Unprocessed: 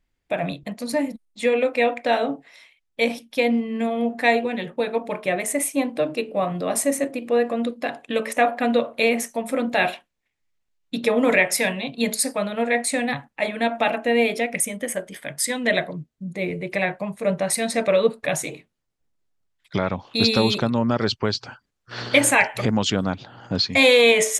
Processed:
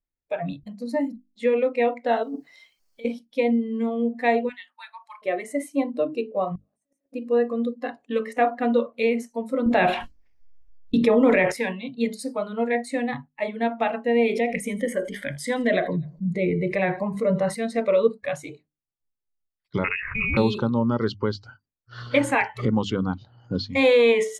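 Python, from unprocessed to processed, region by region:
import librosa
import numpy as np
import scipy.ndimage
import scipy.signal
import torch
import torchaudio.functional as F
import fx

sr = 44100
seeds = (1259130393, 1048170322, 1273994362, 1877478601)

y = fx.chain(x, sr, fx.over_compress(threshold_db=-32.0, ratio=-1.0),
    fx.quant_dither(seeds[0], bits=10, dither='triangular'), at=(2.23, 3.05))
y = fx.chain(y, sr, fx.cheby2_highpass(hz=490.0, order=4, stop_db=40),
    fx.high_shelf(hz=5900.0, db=4.0), at=(4.49, 5.22))
y = fx.chain(y, sr, fx.over_compress(threshold_db=-27.0, ratio=-1.0),
    fx.gate_flip(shuts_db=-20.0, range_db=-37), at=(6.55, 7.13))
y = fx.chain(y, sr, fx.gate_hold(open_db=-26.0, close_db=-30.0, hold_ms=71.0, range_db=-21, attack_ms=1.4, release_ms=100.0),
    fx.low_shelf(hz=120.0, db=8.0),
    fx.env_flatten(amount_pct=70), at=(9.66, 11.52))
y = fx.chain(y, sr, fx.echo_feedback(ms=83, feedback_pct=51, wet_db=-23.0),
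    fx.env_flatten(amount_pct=50), at=(14.16, 17.55))
y = fx.chain(y, sr, fx.freq_invert(carrier_hz=2700),
    fx.env_flatten(amount_pct=70), at=(19.84, 20.37))
y = fx.hum_notches(y, sr, base_hz=50, count=6)
y = fx.noise_reduce_blind(y, sr, reduce_db=15)
y = fx.lowpass(y, sr, hz=1100.0, slope=6)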